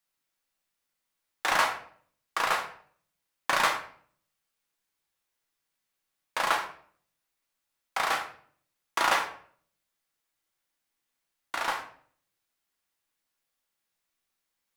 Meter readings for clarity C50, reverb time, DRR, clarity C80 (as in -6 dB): 10.0 dB, 0.55 s, 2.0 dB, 13.5 dB